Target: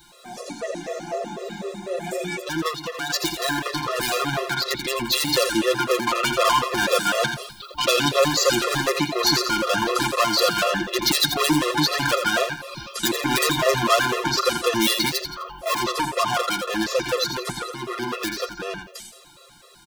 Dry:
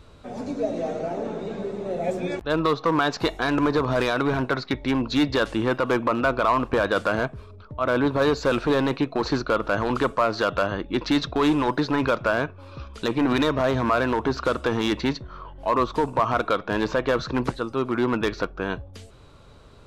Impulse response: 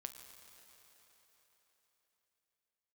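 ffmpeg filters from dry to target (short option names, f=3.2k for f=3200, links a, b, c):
-filter_complex "[0:a]acrossover=split=210[a][b];[b]asoftclip=type=tanh:threshold=-24.5dB[c];[a][c]amix=inputs=2:normalize=0,asettb=1/sr,asplit=3[d][e][f];[d]atrim=end=7.234[g];[e]atrim=start=7.23:end=8.2,asetpts=PTS-STARTPTS,afade=t=in:d=0.004:c=qsin,afade=t=out:st=0.966:d=0.004:c=qsin,highshelf=f=2.5k:t=q:w=1.5:g=6[h];[f]atrim=start=8.196[i];[g][h]acrossfade=d=0.004:c1=hsin:c2=qsin[j];[j][i]acrossfade=d=0.004:c1=qsin:c2=hsin,asplit=2[k][l];[l]aecho=0:1:85|170|255|340:0.422|0.156|0.0577|0.0214[m];[k][m]amix=inputs=2:normalize=0,dynaudnorm=f=710:g=13:m=6.5dB,aecho=1:1:5.7:0.81,asettb=1/sr,asplit=3[n][o][p];[n]atrim=end=15.094[q];[o]atrim=start=15.09:end=15.8,asetpts=PTS-STARTPTS,afade=t=in:d=0.004:c=qsin,afade=t=out:st=0.706:d=0.004:c=qsin,volume=21dB,asoftclip=hard,volume=-21dB[r];[p]atrim=start=15.796[s];[q][r]acrossfade=d=0.004:c1=hsin:c2=qsin[t];[t][s]acrossfade=d=0.004:c1=qsin:c2=hsin,aemphasis=mode=production:type=riaa,asettb=1/sr,asplit=3[u][v][w];[u]atrim=end=2.684[x];[v]atrim=start=2.68:end=3.1,asetpts=PTS-STARTPTS,afade=t=in:d=0.004:c=qsin,afade=t=out:st=0.416:d=0.004:c=qsin,acompressor=threshold=-27dB:ratio=4[y];[w]atrim=start=3.096[z];[x][y]acrossfade=d=0.004:c1=hsin:c2=qsin[aa];[aa][z]acrossfade=d=0.004:c1=qsin:c2=hsin,afftfilt=real='re*gt(sin(2*PI*4*pts/sr)*(1-2*mod(floor(b*sr/1024/350),2)),0)':imag='im*gt(sin(2*PI*4*pts/sr)*(1-2*mod(floor(b*sr/1024/350),2)),0)':win_size=1024:overlap=0.75,volume=3dB"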